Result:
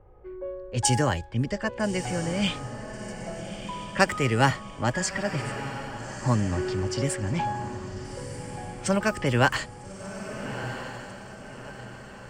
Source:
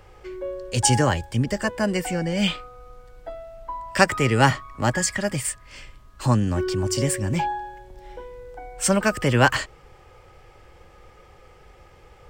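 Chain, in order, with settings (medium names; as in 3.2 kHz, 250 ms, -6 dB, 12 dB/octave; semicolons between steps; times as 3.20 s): level-controlled noise filter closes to 750 Hz, open at -16.5 dBFS; echo that smears into a reverb 1286 ms, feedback 46%, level -10 dB; trim -4 dB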